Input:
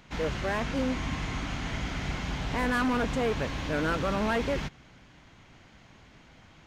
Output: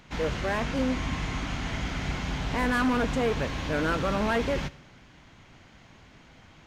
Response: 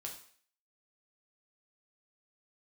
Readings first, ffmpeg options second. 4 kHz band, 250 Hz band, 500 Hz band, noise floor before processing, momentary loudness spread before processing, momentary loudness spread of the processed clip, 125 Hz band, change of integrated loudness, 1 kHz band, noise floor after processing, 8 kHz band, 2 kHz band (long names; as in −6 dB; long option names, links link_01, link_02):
+1.5 dB, +2.0 dB, +1.5 dB, −56 dBFS, 6 LU, 7 LU, +1.5 dB, +1.5 dB, +1.5 dB, −54 dBFS, +1.5 dB, +1.5 dB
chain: -filter_complex "[0:a]asplit=2[link_01][link_02];[1:a]atrim=start_sample=2205,asetrate=32193,aresample=44100[link_03];[link_02][link_03]afir=irnorm=-1:irlink=0,volume=-11dB[link_04];[link_01][link_04]amix=inputs=2:normalize=0"